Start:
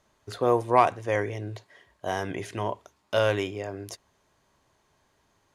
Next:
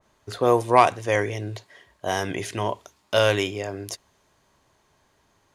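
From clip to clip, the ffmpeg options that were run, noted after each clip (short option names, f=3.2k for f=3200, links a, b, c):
-af "adynamicequalizer=threshold=0.00794:dfrequency=2400:dqfactor=0.7:tfrequency=2400:tqfactor=0.7:attack=5:release=100:ratio=0.375:range=3.5:mode=boostabove:tftype=highshelf,volume=3.5dB"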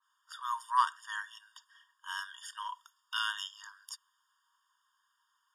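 -af "afftfilt=real='re*eq(mod(floor(b*sr/1024/930),2),1)':imag='im*eq(mod(floor(b*sr/1024/930),2),1)':win_size=1024:overlap=0.75,volume=-7dB"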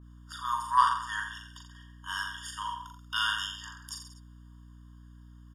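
-filter_complex "[0:a]asplit=2[a][b];[b]aecho=0:1:40|84|132.4|185.6|244.2:0.631|0.398|0.251|0.158|0.1[c];[a][c]amix=inputs=2:normalize=0,acontrast=37,aeval=exprs='val(0)+0.00447*(sin(2*PI*60*n/s)+sin(2*PI*2*60*n/s)/2+sin(2*PI*3*60*n/s)/3+sin(2*PI*4*60*n/s)/4+sin(2*PI*5*60*n/s)/5)':c=same,volume=-2.5dB"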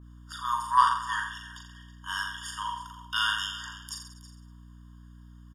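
-af "aecho=1:1:322:0.158,volume=2dB"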